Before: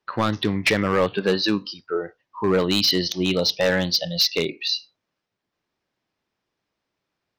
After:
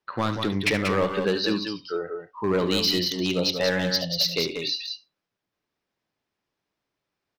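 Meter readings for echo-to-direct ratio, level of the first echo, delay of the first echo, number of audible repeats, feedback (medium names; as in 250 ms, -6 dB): -5.0 dB, -12.0 dB, 72 ms, 2, no regular repeats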